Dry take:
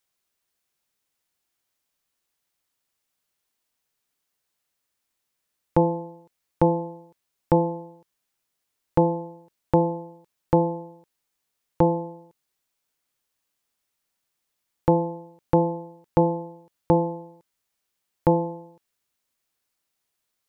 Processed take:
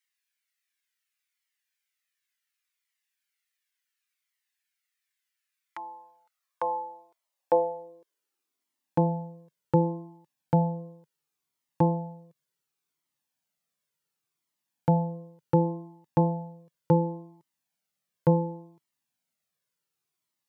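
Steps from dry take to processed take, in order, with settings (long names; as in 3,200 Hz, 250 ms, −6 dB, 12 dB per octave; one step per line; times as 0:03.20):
high-pass filter sweep 1,900 Hz → 150 Hz, 0:05.60–0:09.30
flanger whose copies keep moving one way falling 0.69 Hz
level −1.5 dB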